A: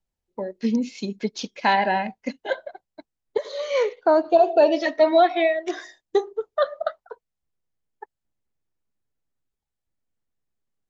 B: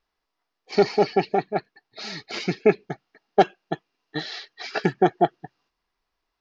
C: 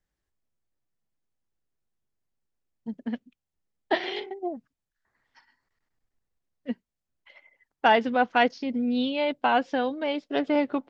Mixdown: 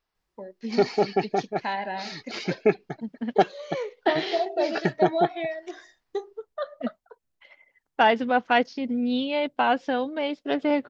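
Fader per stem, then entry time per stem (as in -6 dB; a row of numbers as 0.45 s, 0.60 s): -10.0 dB, -3.0 dB, +0.5 dB; 0.00 s, 0.00 s, 0.15 s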